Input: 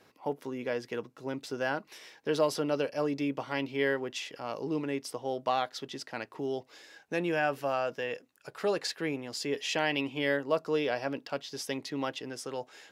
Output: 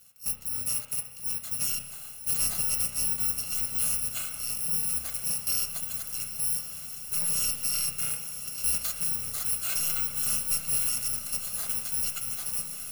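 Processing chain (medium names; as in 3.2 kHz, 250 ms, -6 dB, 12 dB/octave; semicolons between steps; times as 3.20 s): bit-reversed sample order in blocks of 128 samples; treble shelf 5.6 kHz +7 dB; saturation -23 dBFS, distortion -10 dB; echo that smears into a reverb 1001 ms, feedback 75%, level -11 dB; spring tank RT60 1.1 s, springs 32 ms, chirp 75 ms, DRR 5.5 dB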